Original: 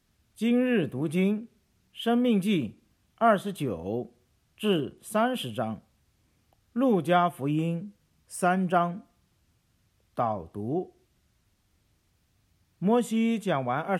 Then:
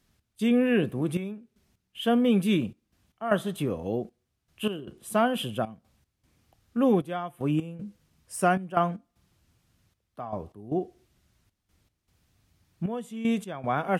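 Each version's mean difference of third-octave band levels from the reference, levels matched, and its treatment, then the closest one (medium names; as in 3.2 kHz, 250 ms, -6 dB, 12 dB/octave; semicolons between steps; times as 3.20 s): 3.5 dB: trance gate "x.xxxx..x.xxxx." 77 bpm -12 dB; trim +1.5 dB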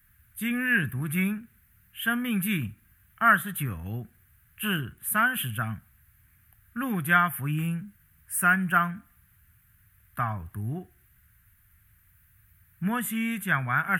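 7.0 dB: FFT filter 110 Hz 0 dB, 510 Hz -26 dB, 1.1 kHz -7 dB, 1.6 kHz +7 dB, 3.6 kHz -12 dB, 5.3 kHz -17 dB, 7.9 kHz -6 dB, 13 kHz +13 dB; trim +8 dB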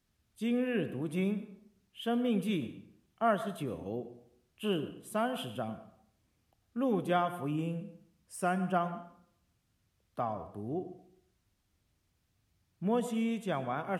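2.5 dB: plate-style reverb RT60 0.67 s, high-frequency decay 0.75×, pre-delay 85 ms, DRR 12.5 dB; trim -7 dB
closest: third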